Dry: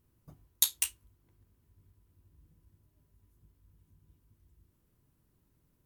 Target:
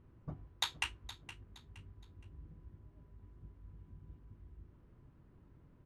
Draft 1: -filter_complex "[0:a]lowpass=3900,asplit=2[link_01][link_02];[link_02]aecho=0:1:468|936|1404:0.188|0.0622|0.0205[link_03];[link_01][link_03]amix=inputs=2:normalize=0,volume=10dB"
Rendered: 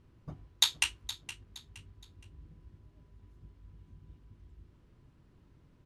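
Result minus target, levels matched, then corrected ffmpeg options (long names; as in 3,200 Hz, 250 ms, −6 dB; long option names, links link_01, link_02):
2,000 Hz band −8.5 dB
-filter_complex "[0:a]lowpass=1800,asplit=2[link_01][link_02];[link_02]aecho=0:1:468|936|1404:0.188|0.0622|0.0205[link_03];[link_01][link_03]amix=inputs=2:normalize=0,volume=10dB"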